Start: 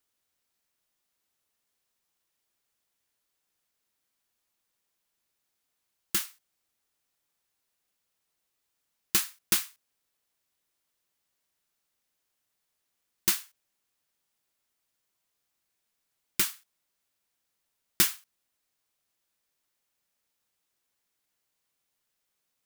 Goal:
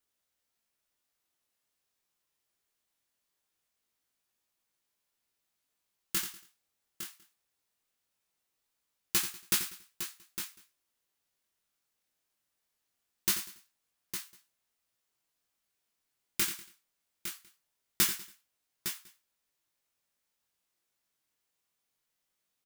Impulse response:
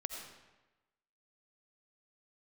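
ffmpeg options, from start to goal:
-filter_complex "[0:a]asplit=2[a][b];[b]aecho=0:1:87|858:0.299|0.335[c];[a][c]amix=inputs=2:normalize=0,flanger=delay=16.5:depth=7.4:speed=0.21,asplit=2[d][e];[e]aecho=0:1:194:0.0794[f];[d][f]amix=inputs=2:normalize=0"

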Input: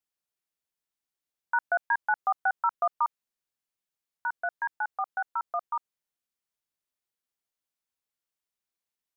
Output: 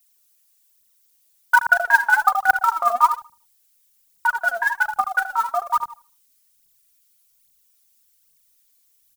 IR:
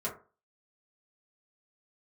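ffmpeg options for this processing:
-filter_complex "[0:a]asubboost=boost=4:cutoff=240,asplit=2[a][b];[b]adelay=79,lowpass=f=830:p=1,volume=-3dB,asplit=2[c][d];[d]adelay=79,lowpass=f=830:p=1,volume=0.37,asplit=2[e][f];[f]adelay=79,lowpass=f=830:p=1,volume=0.37,asplit=2[g][h];[h]adelay=79,lowpass=f=830:p=1,volume=0.37,asplit=2[i][j];[j]adelay=79,lowpass=f=830:p=1,volume=0.37[k];[a][c][e][g][i][k]amix=inputs=6:normalize=0,aphaser=in_gain=1:out_gain=1:delay=4.6:decay=0.69:speed=1.2:type=triangular,crystalizer=i=8:c=0,volume=3.5dB"

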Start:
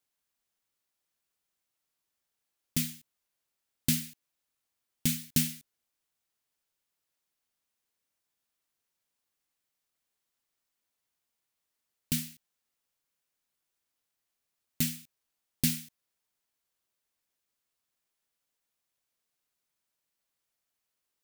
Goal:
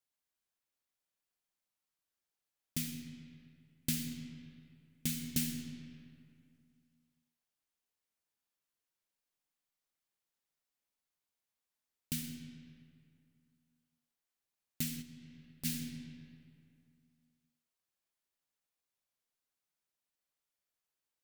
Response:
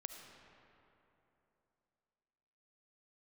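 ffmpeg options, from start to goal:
-filter_complex "[1:a]atrim=start_sample=2205,asetrate=57330,aresample=44100[a];[0:a][a]afir=irnorm=-1:irlink=0,asplit=3[b][c][d];[b]afade=t=out:st=15.01:d=0.02[e];[c]acompressor=threshold=-50dB:ratio=3,afade=t=in:st=15.01:d=0.02,afade=t=out:st=15.64:d=0.02[f];[d]afade=t=in:st=15.64:d=0.02[g];[e][f][g]amix=inputs=3:normalize=0"

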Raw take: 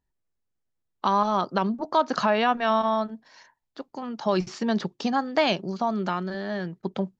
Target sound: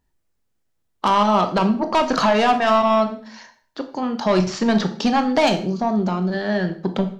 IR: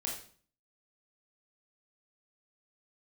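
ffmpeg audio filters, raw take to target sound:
-filter_complex "[0:a]asplit=3[a][b][c];[a]afade=t=out:st=5.48:d=0.02[d];[b]equalizer=f=2k:w=0.56:g=-13,afade=t=in:st=5.48:d=0.02,afade=t=out:st=6.32:d=0.02[e];[c]afade=t=in:st=6.32:d=0.02[f];[d][e][f]amix=inputs=3:normalize=0,asoftclip=type=tanh:threshold=-20dB,asplit=2[g][h];[1:a]atrim=start_sample=2205[i];[h][i]afir=irnorm=-1:irlink=0,volume=-3.5dB[j];[g][j]amix=inputs=2:normalize=0,volume=5.5dB"

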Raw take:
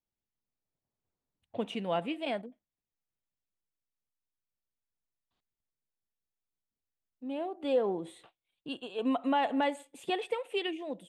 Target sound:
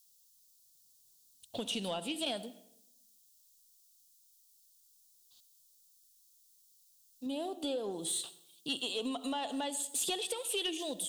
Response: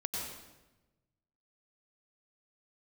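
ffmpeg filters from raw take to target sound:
-filter_complex "[0:a]acrossover=split=2800[a][b];[b]acompressor=threshold=-58dB:ratio=4:attack=1:release=60[c];[a][c]amix=inputs=2:normalize=0,asettb=1/sr,asplit=3[d][e][f];[d]atrim=end=7.264[g];[e]atrim=start=7.26:end=7.91,asetpts=PTS-STARTPTS,afade=t=in:d=0.004:c=qsin,afade=t=out:st=0.646:d=0.004:c=qsin,tiltshelf=f=970:g=3[h];[f]atrim=start=7.906[i];[g][h]acrossfade=d=0.004:c1=hsin:c2=qsin[j];[j][i]acrossfade=d=0.004:c1=qsin:c2=hsin,acompressor=threshold=-35dB:ratio=6,aexciter=amount=16:drive=7.5:freq=3.4k,asoftclip=type=tanh:threshold=-26.5dB,asplit=2[k][l];[1:a]atrim=start_sample=2205,asetrate=61740,aresample=44100[m];[l][m]afir=irnorm=-1:irlink=0,volume=-13.5dB[n];[k][n]amix=inputs=2:normalize=0"

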